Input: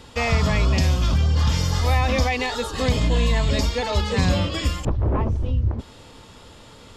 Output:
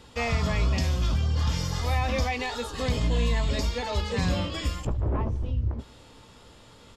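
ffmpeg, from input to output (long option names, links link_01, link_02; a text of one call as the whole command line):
ffmpeg -i in.wav -filter_complex "[0:a]asplit=2[link_01][link_02];[link_02]adelay=17,volume=-11dB[link_03];[link_01][link_03]amix=inputs=2:normalize=0,asplit=2[link_04][link_05];[link_05]aecho=0:1:77|154|231|308:0.075|0.039|0.0203|0.0105[link_06];[link_04][link_06]amix=inputs=2:normalize=0,asoftclip=type=hard:threshold=-9dB,volume=-6.5dB" out.wav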